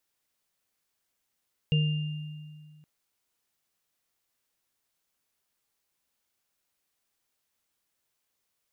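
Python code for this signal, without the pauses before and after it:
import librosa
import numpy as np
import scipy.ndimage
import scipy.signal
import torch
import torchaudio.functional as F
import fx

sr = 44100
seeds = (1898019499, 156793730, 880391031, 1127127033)

y = fx.additive_free(sr, length_s=1.12, hz=152.0, level_db=-20.0, upper_db=(-14.5, -9), decay_s=2.05, upper_decays_s=(0.59, 1.47), upper_hz=(464.0, 2800.0))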